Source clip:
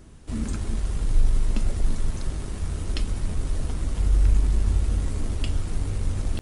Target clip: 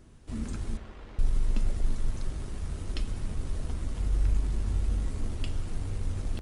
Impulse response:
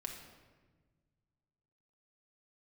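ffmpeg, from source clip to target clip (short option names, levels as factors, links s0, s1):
-filter_complex "[0:a]asettb=1/sr,asplit=3[s0][s1][s2];[s0]atrim=end=0.774[s3];[s1]atrim=start=0.77:end=1.19,asetpts=PTS-STARTPTS,afade=t=in:d=0.004:c=qsin,afade=t=out:st=0.416:d=0.004:c=qsin,highpass=410,lowpass=2800[s4];[s2]atrim=start=1.186[s5];[s3][s4]acrossfade=d=0.004:c1=hsin:c2=qsin[s6];[s6][s5]acrossfade=d=0.004:c1=qsin:c2=hsin,asplit=2[s7][s8];[1:a]atrim=start_sample=2205,asetrate=24696,aresample=44100,lowpass=7700[s9];[s8][s9]afir=irnorm=-1:irlink=0,volume=0.282[s10];[s7][s10]amix=inputs=2:normalize=0,volume=0.398"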